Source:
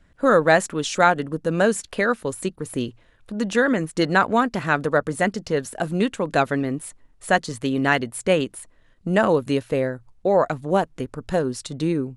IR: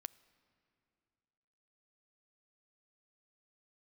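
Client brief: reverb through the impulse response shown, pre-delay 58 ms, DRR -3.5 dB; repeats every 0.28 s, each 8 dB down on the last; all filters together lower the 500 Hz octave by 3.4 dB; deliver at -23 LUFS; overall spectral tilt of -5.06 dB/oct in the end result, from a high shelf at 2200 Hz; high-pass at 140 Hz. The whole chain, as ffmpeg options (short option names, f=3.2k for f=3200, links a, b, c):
-filter_complex "[0:a]highpass=140,equalizer=f=500:t=o:g=-3.5,highshelf=f=2.2k:g=-8.5,aecho=1:1:280|560|840|1120|1400:0.398|0.159|0.0637|0.0255|0.0102,asplit=2[a][b];[1:a]atrim=start_sample=2205,adelay=58[c];[b][c]afir=irnorm=-1:irlink=0,volume=8.5dB[d];[a][d]amix=inputs=2:normalize=0,volume=-4dB"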